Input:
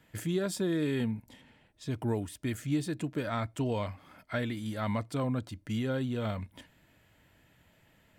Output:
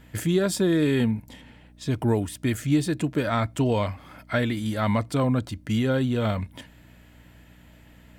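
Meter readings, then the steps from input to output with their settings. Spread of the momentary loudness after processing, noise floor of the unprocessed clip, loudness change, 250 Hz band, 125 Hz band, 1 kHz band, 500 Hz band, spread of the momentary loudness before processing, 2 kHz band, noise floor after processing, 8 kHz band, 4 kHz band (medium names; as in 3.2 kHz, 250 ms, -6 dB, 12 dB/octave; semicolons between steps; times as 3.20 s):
8 LU, -66 dBFS, +8.5 dB, +8.5 dB, +8.5 dB, +8.5 dB, +8.5 dB, 8 LU, +8.5 dB, -52 dBFS, +8.5 dB, +8.5 dB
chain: mains buzz 60 Hz, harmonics 5, -61 dBFS -4 dB/octave; trim +8.5 dB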